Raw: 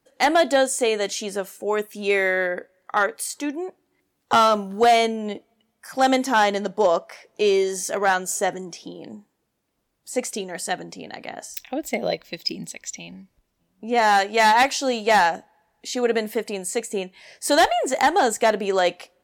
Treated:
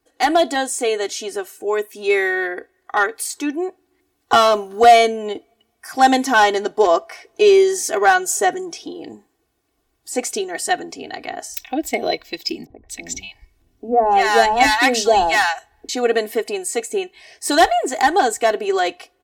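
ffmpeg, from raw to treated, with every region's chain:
-filter_complex "[0:a]asettb=1/sr,asplit=3[s0][s1][s2];[s0]atrim=end=12.664[s3];[s1]atrim=start=12.66:end=15.89,asetpts=PTS-STARTPTS,afade=t=in:d=0.004:c=qsin,afade=t=out:st=3.226:d=0.004:c=qsin,lowshelf=f=250:g=10.5,acrossover=split=220|910[s4][s5][s6];[s4]adelay=40[s7];[s6]adelay=230[s8];[s7][s5][s8]amix=inputs=3:normalize=0,atrim=end_sample=142443[s9];[s2]atrim=start=15.886[s10];[s3][s9]acrossfade=d=0.004:c1=hsin:c2=qsin[s11];[s11][s10]acrossfade=d=0.004:c1=qsin:c2=hsin,equalizer=f=64:w=7:g=7,aecho=1:1:2.7:0.83,dynaudnorm=f=560:g=11:m=3.76,volume=0.891"

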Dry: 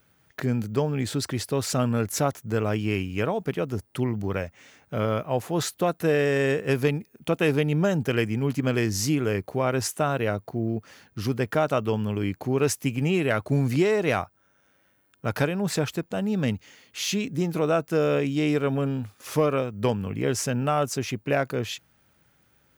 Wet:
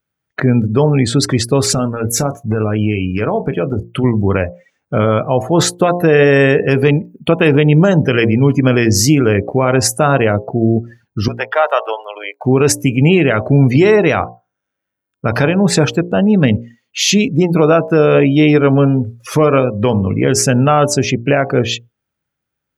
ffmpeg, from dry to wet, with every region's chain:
-filter_complex "[0:a]asettb=1/sr,asplit=3[s0][s1][s2];[s0]atrim=end=1.744[s3];[s1]atrim=start=1.74:end=4.04,asetpts=PTS-STARTPTS,afade=t=in:d=0.004:c=qsin,afade=t=out:st=2.296:d=0.004:c=qsin,acompressor=threshold=0.0562:ratio=16:attack=3.2:release=140:knee=1:detection=peak,aeval=exprs='0.0841*(abs(mod(val(0)/0.0841+3,4)-2)-1)':c=same,asplit=2[s4][s5];[s5]adelay=28,volume=0.299[s6];[s4][s6]amix=inputs=2:normalize=0,atrim=end_sample=101430[s7];[s2]atrim=start=4.036[s8];[s3][s7]acrossfade=d=0.004:c1=hsin:c2=qsin[s9];[s9][s8]acrossfade=d=0.004:c1=qsin:c2=hsin,asettb=1/sr,asplit=3[s10][s11][s12];[s10]atrim=end=11.284[s13];[s11]atrim=start=11.28:end=12.45,asetpts=PTS-STARTPTS,afade=t=in:d=0.004:c=qsin,afade=t=out:st=1.166:d=0.004:c=qsin,aeval=exprs='if(lt(val(0),0),0.447*val(0),val(0))':c=same,highpass=f=570:w=0.5412,highpass=f=570:w=1.3066[s14];[s12]atrim=start=12.446[s15];[s13][s14]acrossfade=d=0.004:c1=hsin:c2=qsin[s16];[s16][s15]acrossfade=d=0.004:c1=qsin:c2=hsin,bandreject=f=58.64:t=h:w=4,bandreject=f=117.28:t=h:w=4,bandreject=f=175.92:t=h:w=4,bandreject=f=234.56:t=h:w=4,bandreject=f=293.2:t=h:w=4,bandreject=f=351.84:t=h:w=4,bandreject=f=410.48:t=h:w=4,bandreject=f=469.12:t=h:w=4,bandreject=f=527.76:t=h:w=4,bandreject=f=586.4:t=h:w=4,bandreject=f=645.04:t=h:w=4,bandreject=f=703.68:t=h:w=4,bandreject=f=762.32:t=h:w=4,bandreject=f=820.96:t=h:w=4,bandreject=f=879.6:t=h:w=4,bandreject=f=938.24:t=h:w=4,bandreject=f=996.88:t=h:w=4,bandreject=f=1055.52:t=h:w=4,bandreject=f=1114.16:t=h:w=4,afftdn=nr=29:nf=-40,alimiter=level_in=6.31:limit=0.891:release=50:level=0:latency=1,volume=0.891"

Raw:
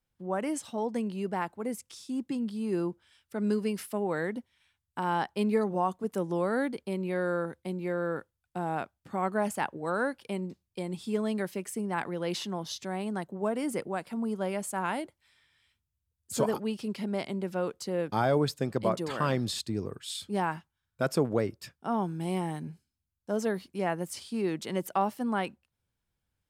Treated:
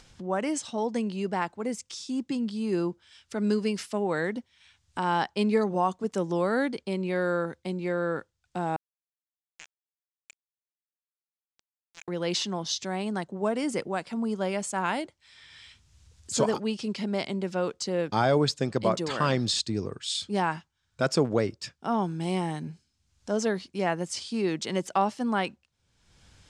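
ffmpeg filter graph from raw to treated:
-filter_complex "[0:a]asettb=1/sr,asplit=3[s0][s1][s2];[s0]atrim=end=8.764[s3];[s1]atrim=start=8.76:end=12.08,asetpts=PTS-STARTPTS,afade=t=in:d=0.004:c=qsin,afade=t=out:st=3.316:d=0.004:c=qsin,bandpass=f=2400:t=q:w=19,aeval=exprs='sgn(val(0))*max(abs(val(0))-0.00531,0)':c=same[s4];[s2]atrim=start=12.076[s5];[s3][s4]acrossfade=d=0.004:c1=hsin:c2=qsin[s6];[s6][s5]acrossfade=d=0.004:c1=qsin:c2=hsin,lowpass=f=7000:w=0.5412,lowpass=f=7000:w=1.3066,highshelf=f=4200:g=11,acompressor=mode=upward:threshold=0.0112:ratio=2.5,volume=1.33"

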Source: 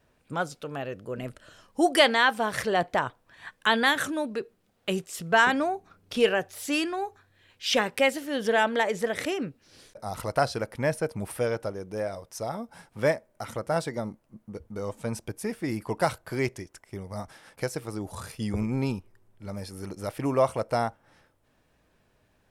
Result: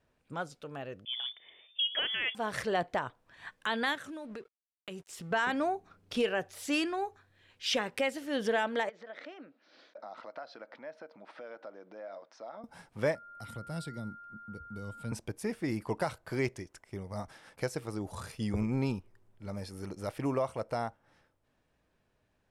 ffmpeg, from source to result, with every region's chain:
-filter_complex "[0:a]asettb=1/sr,asplit=3[s0][s1][s2];[s0]atrim=end=1.054[s3];[s1]atrim=start=1.05:end=2.35,asetpts=PTS-STARTPTS,afade=t=in:d=0.004:c=qsin,afade=t=out:st=1.296:d=0.004:c=qsin,lowshelf=f=370:g=7.5,lowpass=f=3100:t=q:w=0.5098,lowpass=f=3100:t=q:w=0.6013,lowpass=f=3100:t=q:w=0.9,lowpass=f=3100:t=q:w=2.563,afreqshift=-3600[s4];[s2]atrim=start=2.346[s5];[s3][s4]acrossfade=d=0.004:c1=hsin:c2=qsin[s6];[s6][s5]acrossfade=d=0.004:c1=qsin:c2=hsin,asettb=1/sr,asplit=3[s7][s8][s9];[s7]atrim=end=3.954[s10];[s8]atrim=start=3.95:end=5.31,asetpts=PTS-STARTPTS,afade=t=in:d=0.004:c=qsin,afade=t=out:st=1.356:d=0.004:c=qsin,aeval=exprs='sgn(val(0))*max(abs(val(0))-0.00282,0)':c=same,acompressor=threshold=0.0158:ratio=8:attack=3.2:release=140:knee=1:detection=peak[s11];[s9]atrim=start=5.306[s12];[s10][s11]acrossfade=d=0.004:c1=hsin:c2=qsin[s13];[s13][s12]acrossfade=d=0.004:c1=qsin:c2=hsin,asettb=1/sr,asplit=3[s14][s15][s16];[s14]atrim=end=8.894[s17];[s15]atrim=start=8.89:end=12.64,asetpts=PTS-STARTPTS,afade=t=in:d=0.004:c=qsin,afade=t=out:st=3.746:d=0.004:c=qsin,acompressor=threshold=0.0112:ratio=6:attack=3.2:release=140:knee=1:detection=peak,highpass=f=270:w=0.5412,highpass=f=270:w=1.3066,equalizer=f=410:t=q:w=4:g=-9,equalizer=f=630:t=q:w=4:g=5,equalizer=f=1400:t=q:w=4:g=4,equalizer=f=2800:t=q:w=4:g=-4,lowpass=f=4300:w=0.5412,lowpass=f=4300:w=1.3066[s18];[s16]atrim=start=12.636[s19];[s17][s18]acrossfade=d=0.004:c1=hsin:c2=qsin[s20];[s20][s19]acrossfade=d=0.004:c1=qsin:c2=hsin,asettb=1/sr,asplit=3[s21][s22][s23];[s21]atrim=end=13.154[s24];[s22]atrim=start=13.15:end=15.12,asetpts=PTS-STARTPTS,afade=t=in:d=0.004:c=qsin,afade=t=out:st=1.966:d=0.004:c=qsin,equalizer=f=6200:t=o:w=0.33:g=-13,acrossover=split=250|3000[s25][s26][s27];[s26]acompressor=threshold=0.00141:ratio=2:attack=3.2:release=140:knee=2.83:detection=peak[s28];[s25][s28][s27]amix=inputs=3:normalize=0,aeval=exprs='val(0)+0.00631*sin(2*PI*1400*n/s)':c=same[s29];[s23]atrim=start=15.116[s30];[s24][s29]acrossfade=d=0.004:c1=hsin:c2=qsin[s31];[s31][s30]acrossfade=d=0.004:c1=qsin:c2=hsin,highshelf=f=12000:g=-11,alimiter=limit=0.141:level=0:latency=1:release=273,dynaudnorm=f=210:g=21:m=1.68,volume=0.422"

